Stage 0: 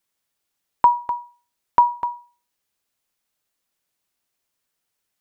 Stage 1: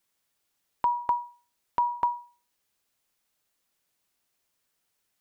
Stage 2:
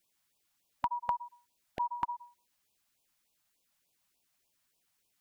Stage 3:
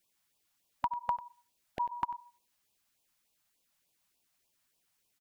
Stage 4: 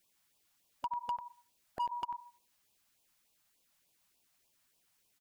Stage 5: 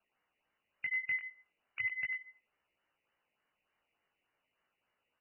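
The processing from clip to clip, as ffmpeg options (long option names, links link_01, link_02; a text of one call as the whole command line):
ffmpeg -i in.wav -filter_complex "[0:a]asplit=2[link_01][link_02];[link_02]acompressor=threshold=-24dB:ratio=6,volume=-1dB[link_03];[link_01][link_03]amix=inputs=2:normalize=0,alimiter=limit=-10.5dB:level=0:latency=1:release=175,volume=-4.5dB" out.wav
ffmpeg -i in.wav -af "acompressor=threshold=-29dB:ratio=4,afftfilt=real='re*(1-between(b*sr/1024,350*pow(1700/350,0.5+0.5*sin(2*PI*3.4*pts/sr))/1.41,350*pow(1700/350,0.5+0.5*sin(2*PI*3.4*pts/sr))*1.41))':imag='im*(1-between(b*sr/1024,350*pow(1700/350,0.5+0.5*sin(2*PI*3.4*pts/sr))/1.41,350*pow(1700/350,0.5+0.5*sin(2*PI*3.4*pts/sr))*1.41))':win_size=1024:overlap=0.75" out.wav
ffmpeg -i in.wav -af "aecho=1:1:95:0.15" out.wav
ffmpeg -i in.wav -af "alimiter=limit=-24dB:level=0:latency=1:release=197,volume=32.5dB,asoftclip=hard,volume=-32.5dB,volume=2.5dB" out.wav
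ffmpeg -i in.wav -af "flanger=delay=15:depth=6.8:speed=0.39,lowpass=frequency=2600:width_type=q:width=0.5098,lowpass=frequency=2600:width_type=q:width=0.6013,lowpass=frequency=2600:width_type=q:width=0.9,lowpass=frequency=2600:width_type=q:width=2.563,afreqshift=-3000,volume=4dB" out.wav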